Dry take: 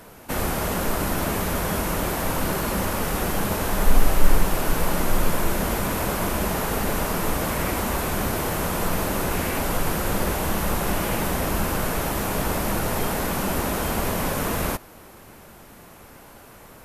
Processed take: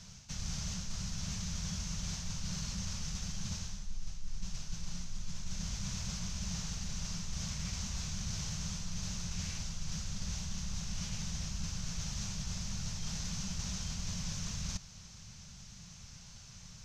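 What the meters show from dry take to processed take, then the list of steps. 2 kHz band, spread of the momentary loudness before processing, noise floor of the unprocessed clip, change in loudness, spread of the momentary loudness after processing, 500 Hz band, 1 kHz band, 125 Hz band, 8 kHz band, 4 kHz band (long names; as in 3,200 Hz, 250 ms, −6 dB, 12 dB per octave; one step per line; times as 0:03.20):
−21.5 dB, 1 LU, −46 dBFS, −15.0 dB, 11 LU, −33.0 dB, −28.0 dB, −11.0 dB, −9.0 dB, −8.0 dB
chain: drawn EQ curve 180 Hz 0 dB, 300 Hz −27 dB, 1,900 Hz −12 dB, 6,200 Hz +10 dB, 11,000 Hz −28 dB
reversed playback
downward compressor 6 to 1, threshold −34 dBFS, peak gain reduction 24 dB
reversed playback
level −1 dB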